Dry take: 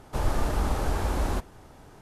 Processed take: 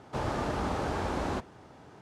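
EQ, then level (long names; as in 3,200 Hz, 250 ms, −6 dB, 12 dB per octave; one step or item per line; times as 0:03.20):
high-pass filter 110 Hz 12 dB per octave
high-frequency loss of the air 77 metres
0.0 dB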